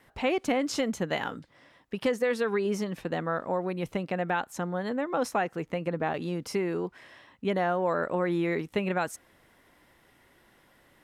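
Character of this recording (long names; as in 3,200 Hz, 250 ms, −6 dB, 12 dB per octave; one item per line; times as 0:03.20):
background noise floor −63 dBFS
spectral slope −4.5 dB per octave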